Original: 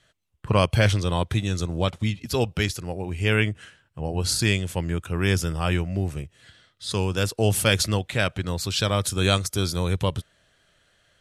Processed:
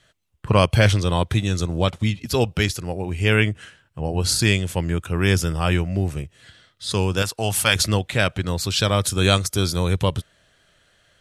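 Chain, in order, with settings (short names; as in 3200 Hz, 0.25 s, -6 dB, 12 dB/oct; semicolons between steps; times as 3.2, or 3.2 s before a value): 7.22–7.76 resonant low shelf 620 Hz -7 dB, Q 1.5; gain +3.5 dB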